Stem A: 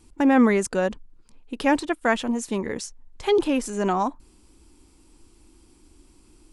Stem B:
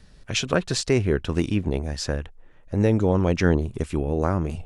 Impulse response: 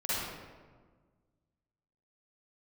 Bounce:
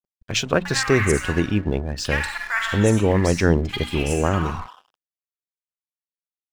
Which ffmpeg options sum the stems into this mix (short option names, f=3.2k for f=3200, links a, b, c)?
-filter_complex "[0:a]highpass=f=1.3k:w=0.5412,highpass=f=1.3k:w=1.3066,adelay=450,volume=0dB,asplit=2[a][b];[b]volume=-3.5dB[c];[1:a]bandreject=f=60:t=h:w=6,bandreject=f=120:t=h:w=6,bandreject=f=180:t=h:w=6,bandreject=f=240:t=h:w=6,bandreject=f=300:t=h:w=6,volume=3dB[d];[2:a]atrim=start_sample=2205[e];[c][e]afir=irnorm=-1:irlink=0[f];[a][d][f]amix=inputs=3:normalize=0,afftdn=nr=24:nf=-42,aeval=exprs='sgn(val(0))*max(abs(val(0))-0.00944,0)':c=same"